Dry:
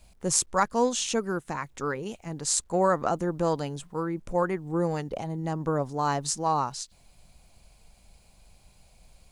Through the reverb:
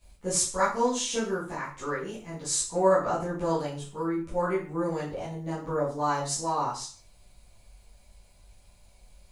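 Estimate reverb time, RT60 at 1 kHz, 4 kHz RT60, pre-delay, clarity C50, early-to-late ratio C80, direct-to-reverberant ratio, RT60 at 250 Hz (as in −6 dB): 0.40 s, 0.40 s, 0.40 s, 5 ms, 6.0 dB, 11.0 dB, −10.5 dB, 0.40 s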